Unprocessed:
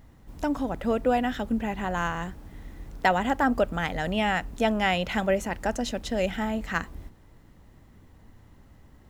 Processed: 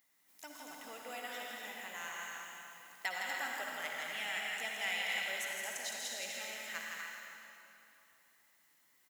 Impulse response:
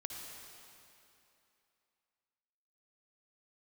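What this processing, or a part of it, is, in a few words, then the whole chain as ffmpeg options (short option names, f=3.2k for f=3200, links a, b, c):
stadium PA: -filter_complex "[0:a]highpass=140,aderivative,equalizer=f=2.1k:t=o:w=0.36:g=6.5,aecho=1:1:163.3|242|288.6:0.562|0.501|0.316[a];[1:a]atrim=start_sample=2205[b];[a][b]afir=irnorm=-1:irlink=0"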